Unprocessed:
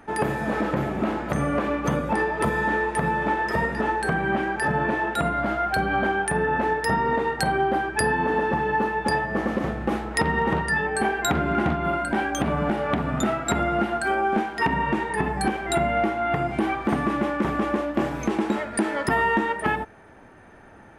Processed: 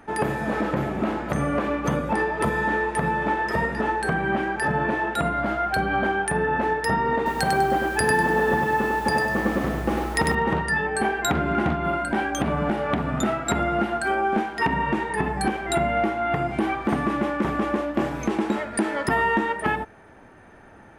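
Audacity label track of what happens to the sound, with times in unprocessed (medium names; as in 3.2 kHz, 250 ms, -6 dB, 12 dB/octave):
7.160000	10.350000	bit-crushed delay 99 ms, feedback 35%, word length 7-bit, level -3.5 dB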